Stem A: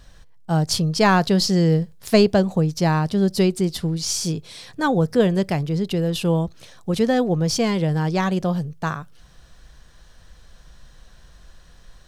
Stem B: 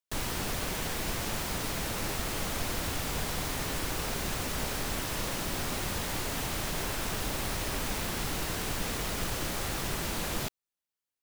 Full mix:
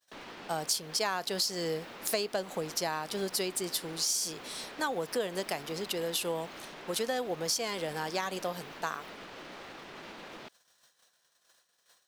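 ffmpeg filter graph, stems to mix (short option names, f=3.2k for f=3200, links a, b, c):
-filter_complex "[0:a]agate=range=-33dB:threshold=-36dB:ratio=3:detection=peak,highpass=480,aemphasis=mode=production:type=50kf,volume=-4.5dB[a];[1:a]acrossover=split=200 4500:gain=0.0794 1 0.0631[b][c][d];[b][c][d]amix=inputs=3:normalize=0,alimiter=level_in=5.5dB:limit=-24dB:level=0:latency=1,volume=-5.5dB,volume=-7.5dB[e];[a][e]amix=inputs=2:normalize=0,acompressor=threshold=-29dB:ratio=4"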